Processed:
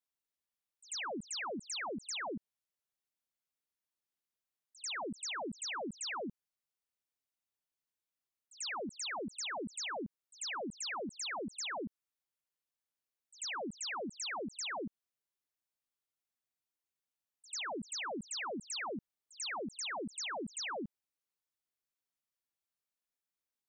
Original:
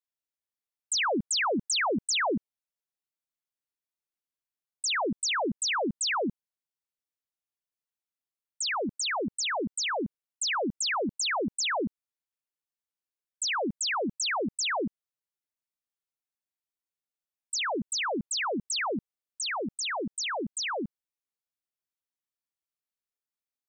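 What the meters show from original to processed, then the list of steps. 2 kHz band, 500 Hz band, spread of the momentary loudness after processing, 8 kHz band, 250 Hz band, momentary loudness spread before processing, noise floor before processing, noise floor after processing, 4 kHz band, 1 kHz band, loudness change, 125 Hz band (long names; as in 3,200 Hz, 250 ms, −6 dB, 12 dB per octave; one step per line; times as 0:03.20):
−10.5 dB, −10.5 dB, 4 LU, −10.5 dB, −10.5 dB, 6 LU, below −85 dBFS, below −85 dBFS, −10.5 dB, −10.5 dB, −10.5 dB, −10.5 dB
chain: brickwall limiter −35.5 dBFS, peak gain reduction 12 dB
echo ahead of the sound 92 ms −19 dB
level −1 dB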